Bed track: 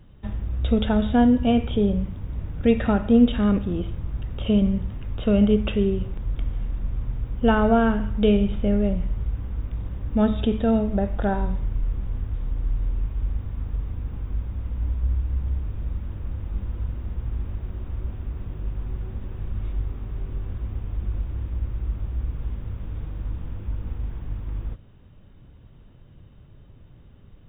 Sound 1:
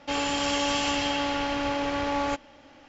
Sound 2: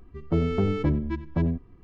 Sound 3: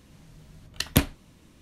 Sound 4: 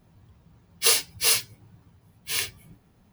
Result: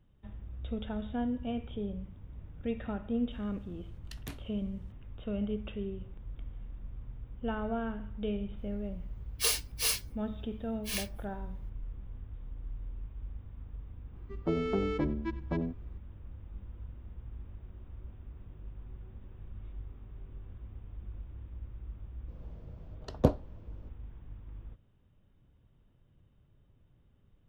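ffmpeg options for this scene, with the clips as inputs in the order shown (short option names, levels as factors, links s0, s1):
-filter_complex "[3:a]asplit=2[s0][s1];[0:a]volume=0.158[s2];[s0]asoftclip=type=tanh:threshold=0.15[s3];[2:a]highpass=220[s4];[s1]firequalizer=gain_entry='entry(290,0);entry(470,10);entry(2000,-21);entry(4800,-15);entry(9400,-29)':delay=0.05:min_phase=1[s5];[s3]atrim=end=1.61,asetpts=PTS-STARTPTS,volume=0.133,afade=t=in:d=0.004:c=hsin,afade=t=out:st=1.606:d=0.004:c=hsin,adelay=3310[s6];[4:a]atrim=end=3.12,asetpts=PTS-STARTPTS,volume=0.355,afade=t=in:d=0.004:c=hsin,afade=t=out:st=3.116:d=0.004:c=hsin,adelay=378378S[s7];[s4]atrim=end=1.83,asetpts=PTS-STARTPTS,volume=0.668,afade=t=in:d=0.004:c=hsin,afade=t=out:st=1.826:d=0.004:c=hsin,adelay=14150[s8];[s5]atrim=end=1.61,asetpts=PTS-STARTPTS,volume=0.631,afade=t=in:d=0.004:c=hsin,afade=t=out:st=1.606:d=0.004:c=hsin,adelay=982548S[s9];[s2][s6][s7][s8][s9]amix=inputs=5:normalize=0"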